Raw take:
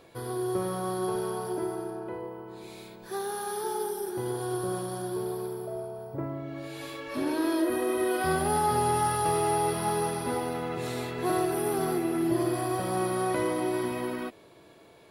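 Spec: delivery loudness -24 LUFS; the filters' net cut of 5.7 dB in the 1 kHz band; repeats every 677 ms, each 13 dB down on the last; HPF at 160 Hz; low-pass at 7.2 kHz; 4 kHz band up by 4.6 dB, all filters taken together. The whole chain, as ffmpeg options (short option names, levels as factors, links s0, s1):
-af "highpass=160,lowpass=7200,equalizer=f=1000:t=o:g=-8,equalizer=f=4000:t=o:g=6.5,aecho=1:1:677|1354|2031:0.224|0.0493|0.0108,volume=2.37"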